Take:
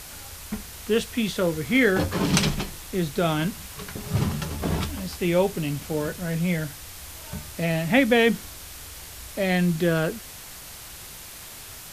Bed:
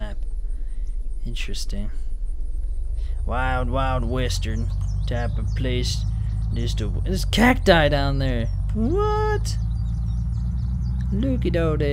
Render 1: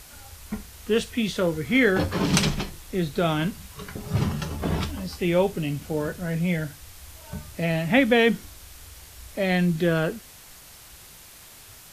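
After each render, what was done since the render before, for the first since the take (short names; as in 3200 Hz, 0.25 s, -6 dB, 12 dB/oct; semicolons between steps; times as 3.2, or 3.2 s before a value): noise print and reduce 6 dB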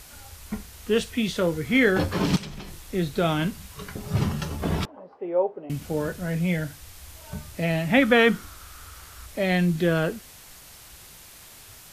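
2.36–2.85 compressor 10:1, threshold -33 dBFS; 4.85–5.7 Butterworth band-pass 630 Hz, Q 1.1; 8.02–9.26 bell 1300 Hz +13.5 dB 0.47 oct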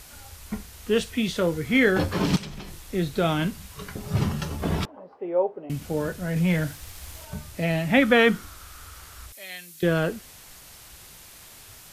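6.36–7.25 sample leveller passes 1; 9.32–9.83 differentiator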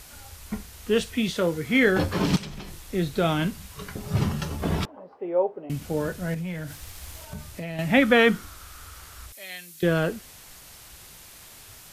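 1.3–1.83 low shelf 67 Hz -11 dB; 6.34–7.79 compressor 4:1, threshold -31 dBFS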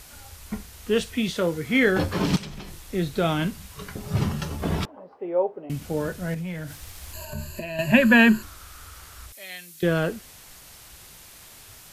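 7.13–8.43 ripple EQ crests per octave 1.4, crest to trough 18 dB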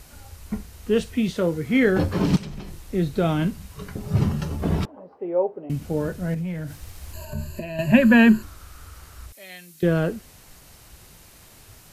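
tilt shelf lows +4 dB, about 680 Hz; notch 3400 Hz, Q 26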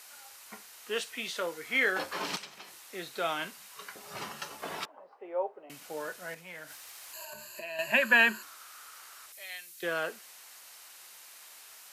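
HPF 950 Hz 12 dB/oct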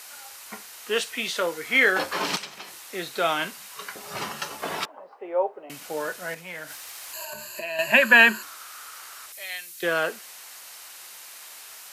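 gain +8 dB; limiter -3 dBFS, peak gain reduction 1 dB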